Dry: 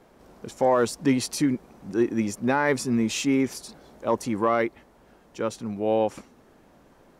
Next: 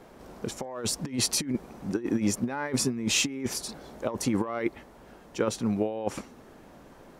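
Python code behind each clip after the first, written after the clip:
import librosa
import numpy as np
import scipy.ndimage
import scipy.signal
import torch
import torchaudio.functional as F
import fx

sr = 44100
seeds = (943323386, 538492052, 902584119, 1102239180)

y = fx.over_compress(x, sr, threshold_db=-27.0, ratio=-0.5)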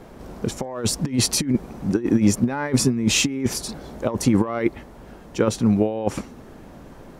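y = fx.low_shelf(x, sr, hz=230.0, db=8.5)
y = y * librosa.db_to_amplitude(5.0)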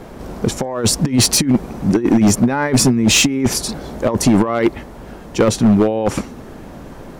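y = np.clip(x, -10.0 ** (-15.0 / 20.0), 10.0 ** (-15.0 / 20.0))
y = y * librosa.db_to_amplitude(8.0)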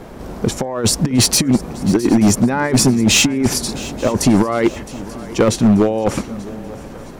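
y = fx.echo_swing(x, sr, ms=885, ratio=3, feedback_pct=37, wet_db=-18)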